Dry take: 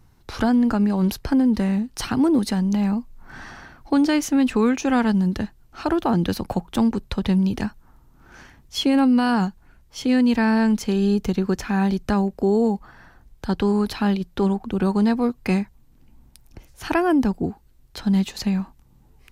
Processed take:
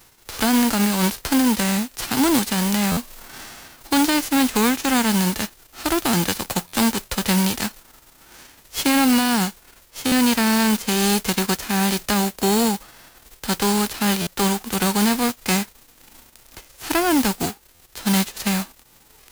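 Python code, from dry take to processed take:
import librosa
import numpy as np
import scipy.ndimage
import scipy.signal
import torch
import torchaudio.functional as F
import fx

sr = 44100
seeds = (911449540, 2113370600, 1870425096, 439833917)

y = fx.envelope_flatten(x, sr, power=0.3)
y = fx.mod_noise(y, sr, seeds[0], snr_db=13)
y = fx.buffer_glitch(y, sr, at_s=(2.91, 6.67, 10.06, 14.21, 17.74), block=512, repeats=4)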